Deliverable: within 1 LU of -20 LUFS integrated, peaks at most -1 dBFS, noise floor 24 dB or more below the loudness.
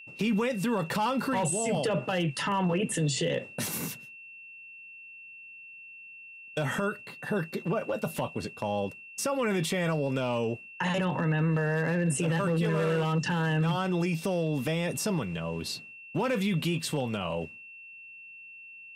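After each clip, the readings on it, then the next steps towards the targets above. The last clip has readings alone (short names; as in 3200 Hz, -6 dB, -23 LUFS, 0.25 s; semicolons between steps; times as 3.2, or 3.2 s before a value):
clipped 0.2%; flat tops at -20.5 dBFS; steady tone 2700 Hz; tone level -45 dBFS; loudness -29.5 LUFS; peak -20.5 dBFS; loudness target -20.0 LUFS
-> clip repair -20.5 dBFS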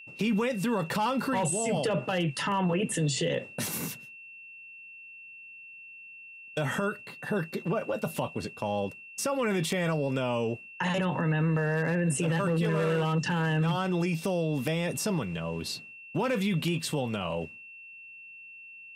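clipped 0.0%; steady tone 2700 Hz; tone level -45 dBFS
-> notch 2700 Hz, Q 30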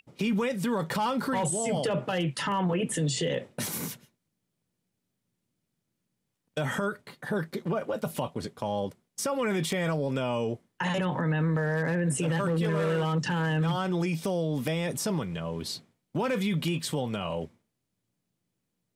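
steady tone none; loudness -29.5 LUFS; peak -13.5 dBFS; loudness target -20.0 LUFS
-> gain +9.5 dB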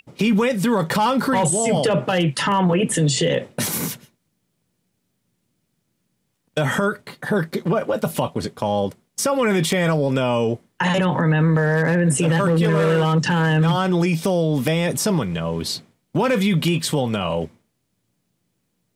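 loudness -20.0 LUFS; peak -4.0 dBFS; noise floor -72 dBFS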